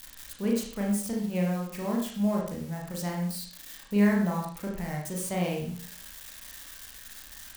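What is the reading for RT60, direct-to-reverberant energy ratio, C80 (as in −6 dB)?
0.50 s, −2.0 dB, 8.0 dB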